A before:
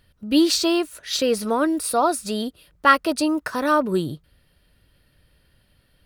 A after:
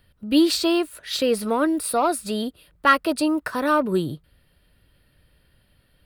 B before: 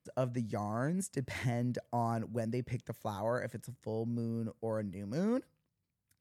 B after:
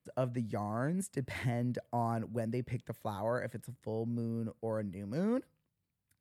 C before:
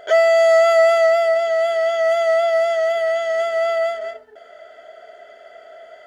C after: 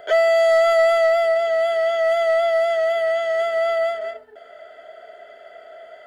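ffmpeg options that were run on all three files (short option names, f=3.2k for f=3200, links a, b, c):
-filter_complex "[0:a]equalizer=f=6.1k:w=2.4:g=-8,acrossover=split=580|1200|3000[a][b][c][d];[b]asoftclip=type=tanh:threshold=-20.5dB[e];[a][e][c][d]amix=inputs=4:normalize=0"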